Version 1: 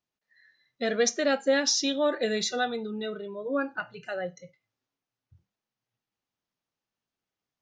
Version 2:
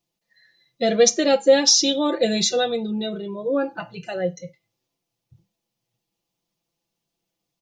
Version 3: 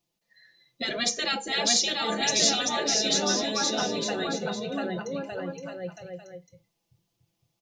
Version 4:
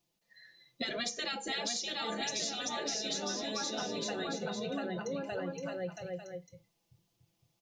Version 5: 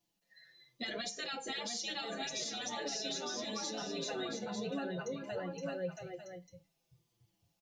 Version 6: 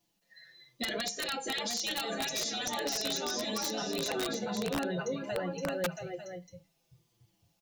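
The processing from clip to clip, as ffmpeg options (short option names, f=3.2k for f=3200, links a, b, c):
-af "equalizer=f=1.5k:t=o:w=1:g=-12.5,aecho=1:1:5.9:0.69,volume=8.5dB"
-af "aecho=1:1:690|1208|1596|1887|2105:0.631|0.398|0.251|0.158|0.1,afftfilt=real='re*lt(hypot(re,im),0.355)':imag='im*lt(hypot(re,im),0.355)':win_size=1024:overlap=0.75"
-af "acompressor=threshold=-33dB:ratio=10"
-filter_complex "[0:a]alimiter=level_in=3.5dB:limit=-24dB:level=0:latency=1:release=60,volume=-3.5dB,asplit=2[a][b];[b]adelay=6.5,afreqshift=-1.1[c];[a][c]amix=inputs=2:normalize=1,volume=1dB"
-af "aeval=exprs='(mod(31.6*val(0)+1,2)-1)/31.6':c=same,volume=5.5dB"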